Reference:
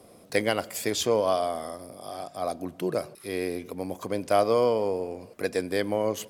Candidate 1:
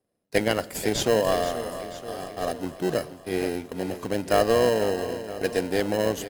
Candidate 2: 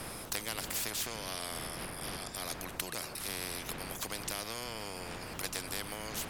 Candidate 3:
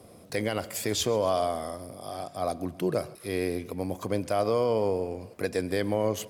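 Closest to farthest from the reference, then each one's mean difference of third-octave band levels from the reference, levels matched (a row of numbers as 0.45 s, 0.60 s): 3, 1, 2; 2.5 dB, 6.0 dB, 14.5 dB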